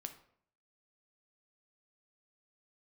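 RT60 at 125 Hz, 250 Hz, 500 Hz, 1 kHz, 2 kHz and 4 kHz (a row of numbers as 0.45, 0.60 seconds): 0.70, 0.65, 0.65, 0.60, 0.50, 0.40 seconds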